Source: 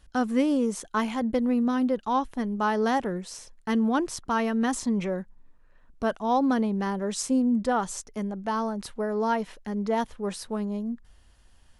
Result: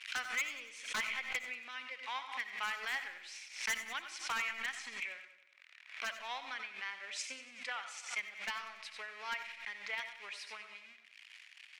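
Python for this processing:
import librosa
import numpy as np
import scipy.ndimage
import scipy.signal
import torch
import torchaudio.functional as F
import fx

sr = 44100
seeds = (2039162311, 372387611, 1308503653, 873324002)

y = x + 0.5 * 10.0 ** (-40.0 / 20.0) * np.sign(x)
y = fx.transient(y, sr, attack_db=10, sustain_db=-4)
y = fx.ladder_bandpass(y, sr, hz=2500.0, resonance_pct=70)
y = 10.0 ** (-34.5 / 20.0) * (np.abs((y / 10.0 ** (-34.5 / 20.0) + 3.0) % 4.0 - 2.0) - 1.0)
y = fx.echo_feedback(y, sr, ms=94, feedback_pct=52, wet_db=-13.5)
y = fx.rev_freeverb(y, sr, rt60_s=0.49, hf_ratio=0.35, predelay_ms=40, drr_db=10.5)
y = fx.pre_swell(y, sr, db_per_s=110.0)
y = y * 10.0 ** (6.5 / 20.0)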